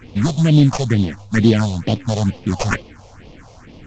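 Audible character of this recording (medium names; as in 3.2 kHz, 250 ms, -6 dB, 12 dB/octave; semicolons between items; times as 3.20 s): aliases and images of a low sample rate 3.8 kHz, jitter 20%; phasing stages 4, 2.2 Hz, lowest notch 260–1600 Hz; µ-law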